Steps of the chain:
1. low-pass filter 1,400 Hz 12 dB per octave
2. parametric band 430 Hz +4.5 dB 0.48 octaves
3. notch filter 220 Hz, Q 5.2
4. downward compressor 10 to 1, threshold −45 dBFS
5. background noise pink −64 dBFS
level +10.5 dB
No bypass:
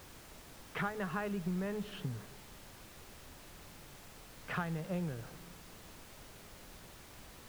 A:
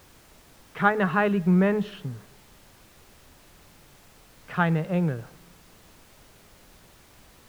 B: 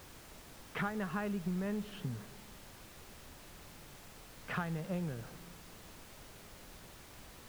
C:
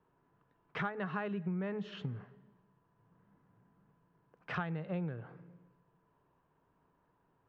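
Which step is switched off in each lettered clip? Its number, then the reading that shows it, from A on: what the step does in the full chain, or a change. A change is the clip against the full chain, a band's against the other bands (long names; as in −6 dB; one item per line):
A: 4, 8 kHz band −14.0 dB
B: 3, 250 Hz band +1.5 dB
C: 5, 4 kHz band −3.5 dB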